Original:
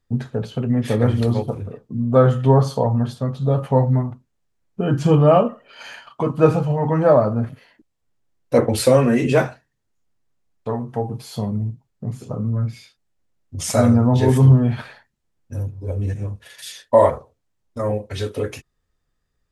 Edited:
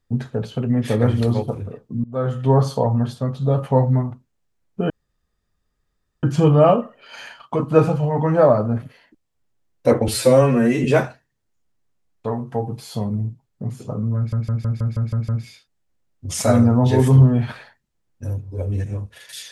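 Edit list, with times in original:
2.04–2.64 s: fade in linear, from -22.5 dB
4.90 s: insert room tone 1.33 s
8.75–9.26 s: stretch 1.5×
12.58 s: stutter 0.16 s, 8 plays

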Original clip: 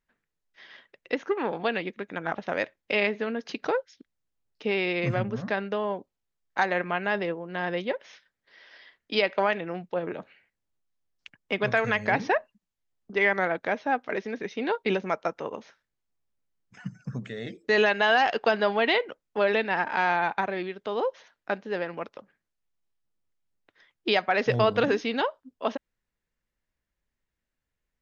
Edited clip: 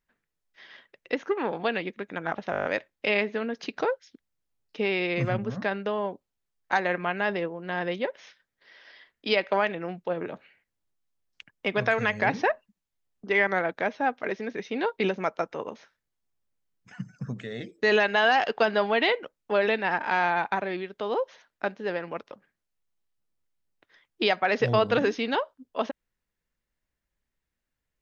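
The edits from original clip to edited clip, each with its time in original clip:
2.51 s: stutter 0.02 s, 8 plays

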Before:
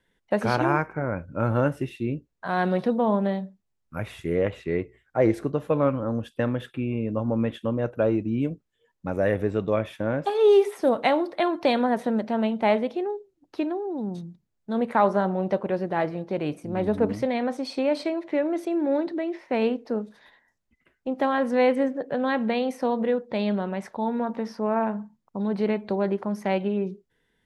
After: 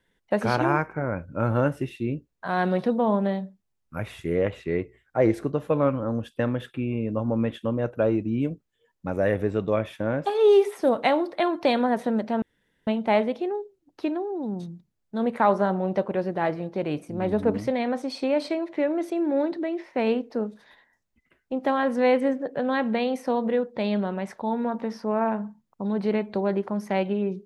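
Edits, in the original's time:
12.42 s: insert room tone 0.45 s

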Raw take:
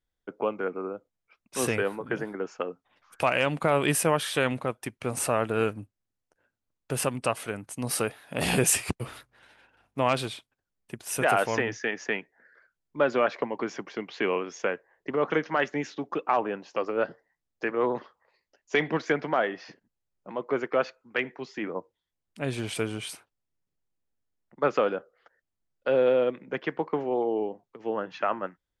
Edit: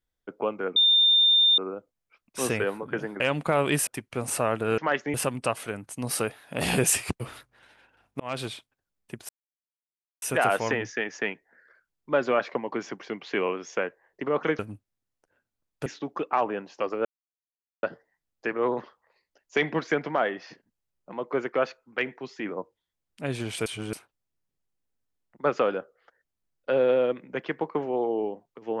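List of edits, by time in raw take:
0.76 s: add tone 3.61 kHz -16 dBFS 0.82 s
2.38–3.36 s: delete
4.03–4.76 s: delete
5.67–6.94 s: swap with 15.46–15.82 s
10.00–10.27 s: fade in
11.09 s: insert silence 0.93 s
17.01 s: insert silence 0.78 s
22.84–23.11 s: reverse

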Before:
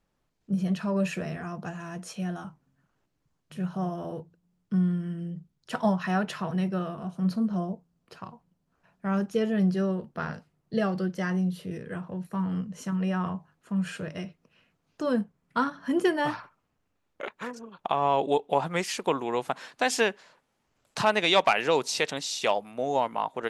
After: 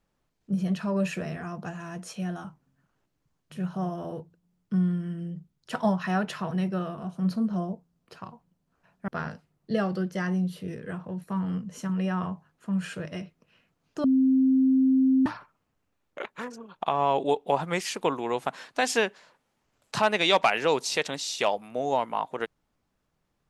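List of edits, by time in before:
9.08–10.11 s: delete
15.07–16.29 s: bleep 263 Hz -17.5 dBFS

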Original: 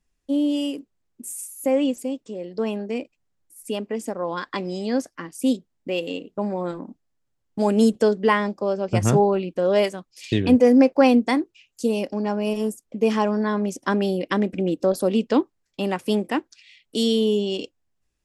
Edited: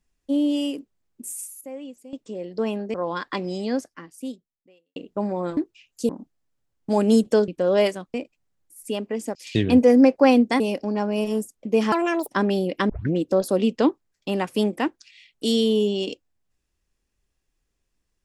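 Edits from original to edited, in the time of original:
1.31–2.43 s: dip -16 dB, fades 0.30 s logarithmic
2.94–4.15 s: move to 10.12 s
4.81–6.17 s: fade out quadratic
8.17–9.46 s: delete
11.37–11.89 s: move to 6.78 s
13.21–13.80 s: speed 162%
14.41 s: tape start 0.25 s

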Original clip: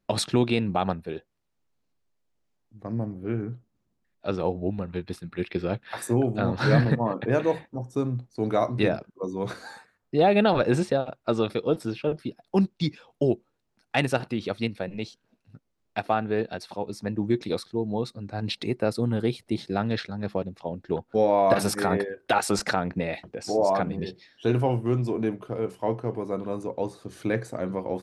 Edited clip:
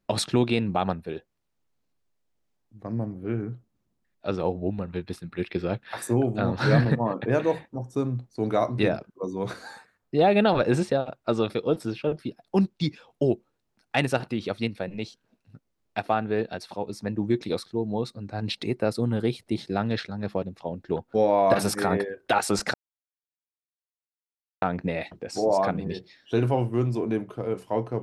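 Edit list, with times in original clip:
22.74 s: insert silence 1.88 s

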